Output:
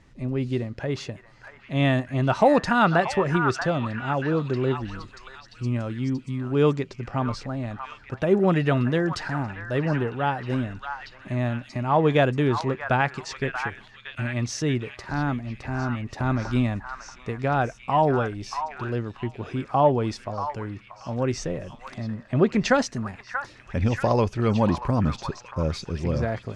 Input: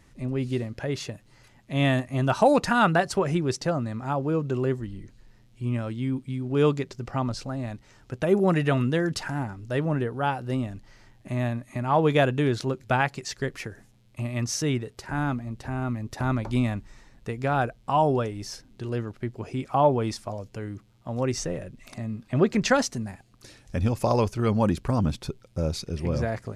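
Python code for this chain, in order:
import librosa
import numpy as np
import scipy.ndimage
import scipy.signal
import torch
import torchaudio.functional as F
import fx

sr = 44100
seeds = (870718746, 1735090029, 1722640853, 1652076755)

y = fx.air_absorb(x, sr, metres=78.0)
y = fx.echo_stepped(y, sr, ms=633, hz=1300.0, octaves=0.7, feedback_pct=70, wet_db=-3.5)
y = y * librosa.db_to_amplitude(1.5)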